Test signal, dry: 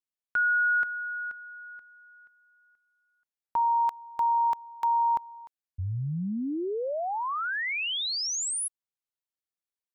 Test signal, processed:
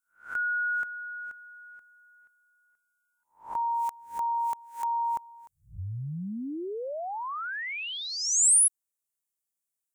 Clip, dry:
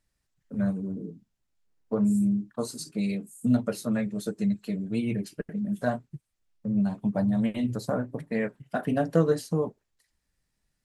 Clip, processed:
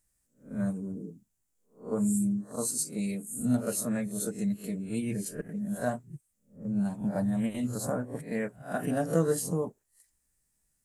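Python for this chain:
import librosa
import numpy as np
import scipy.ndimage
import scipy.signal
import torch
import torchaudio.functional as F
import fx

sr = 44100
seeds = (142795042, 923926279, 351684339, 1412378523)

y = fx.spec_swells(x, sr, rise_s=0.33)
y = fx.high_shelf_res(y, sr, hz=5900.0, db=11.0, q=1.5)
y = F.gain(torch.from_numpy(y), -4.0).numpy()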